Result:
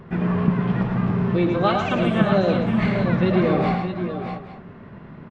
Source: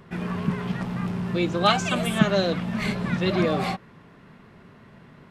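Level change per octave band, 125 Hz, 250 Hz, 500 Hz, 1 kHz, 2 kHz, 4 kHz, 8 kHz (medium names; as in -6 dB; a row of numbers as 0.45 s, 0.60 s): +6.0 dB, +5.5 dB, +4.5 dB, +2.5 dB, +0.5 dB, -5.5 dB, under -10 dB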